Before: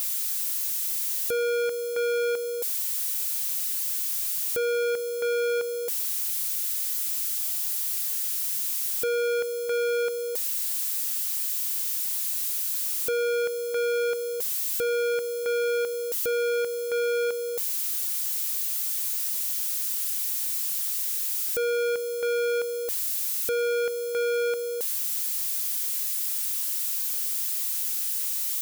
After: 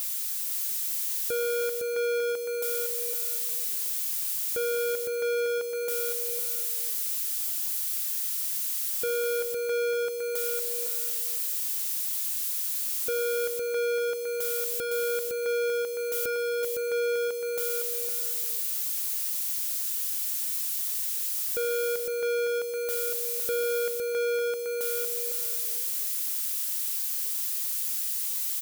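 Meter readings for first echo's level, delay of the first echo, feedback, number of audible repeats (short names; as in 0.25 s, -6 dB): -5.0 dB, 0.51 s, 20%, 3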